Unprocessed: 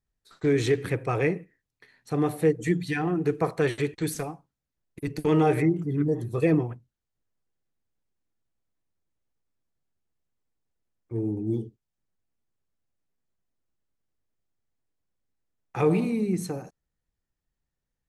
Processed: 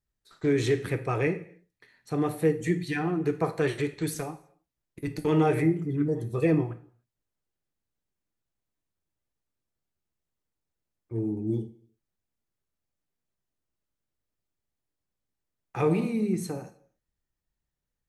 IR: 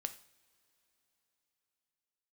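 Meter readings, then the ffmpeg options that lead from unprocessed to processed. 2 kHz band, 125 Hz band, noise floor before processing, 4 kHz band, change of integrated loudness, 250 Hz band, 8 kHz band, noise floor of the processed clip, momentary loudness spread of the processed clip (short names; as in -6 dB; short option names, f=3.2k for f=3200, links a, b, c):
-1.5 dB, -1.5 dB, -85 dBFS, -1.5 dB, -1.5 dB, -1.5 dB, -1.5 dB, under -85 dBFS, 12 LU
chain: -filter_complex "[1:a]atrim=start_sample=2205,afade=t=out:st=0.36:d=0.01,atrim=end_sample=16317[a];[0:a][a]afir=irnorm=-1:irlink=0"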